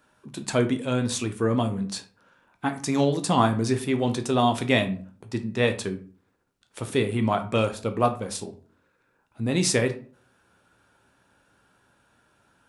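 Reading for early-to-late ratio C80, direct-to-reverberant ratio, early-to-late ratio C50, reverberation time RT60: 19.0 dB, 6.5 dB, 13.5 dB, 0.45 s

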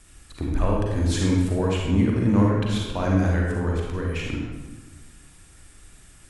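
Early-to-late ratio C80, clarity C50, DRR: 3.0 dB, -0.5 dB, -2.0 dB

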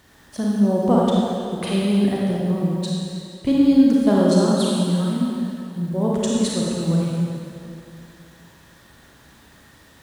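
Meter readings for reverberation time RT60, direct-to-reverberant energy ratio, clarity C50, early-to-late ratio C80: 2.5 s, -4.5 dB, -3.0 dB, -1.0 dB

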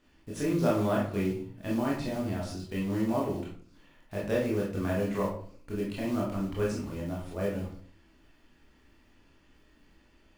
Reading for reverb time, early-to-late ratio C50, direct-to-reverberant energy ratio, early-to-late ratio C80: 0.50 s, 4.0 dB, -5.0 dB, 8.5 dB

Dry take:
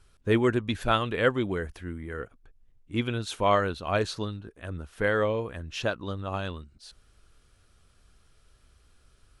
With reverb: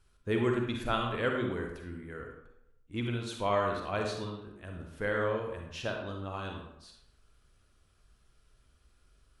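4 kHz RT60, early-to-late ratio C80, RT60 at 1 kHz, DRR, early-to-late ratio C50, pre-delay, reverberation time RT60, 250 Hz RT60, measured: 0.50 s, 6.5 dB, 0.80 s, 1.5 dB, 3.0 dB, 39 ms, 0.80 s, 0.70 s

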